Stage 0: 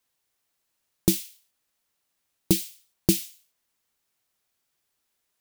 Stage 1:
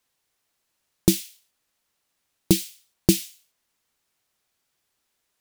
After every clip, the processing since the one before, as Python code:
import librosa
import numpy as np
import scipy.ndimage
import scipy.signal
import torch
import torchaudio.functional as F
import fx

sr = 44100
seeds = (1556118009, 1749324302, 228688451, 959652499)

y = fx.high_shelf(x, sr, hz=12000.0, db=-6.0)
y = F.gain(torch.from_numpy(y), 3.5).numpy()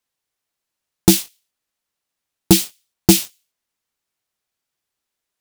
y = fx.leveller(x, sr, passes=3)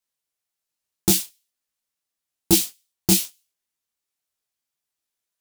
y = fx.high_shelf(x, sr, hz=4400.0, db=7.0)
y = fx.detune_double(y, sr, cents=40)
y = F.gain(torch.from_numpy(y), -4.0).numpy()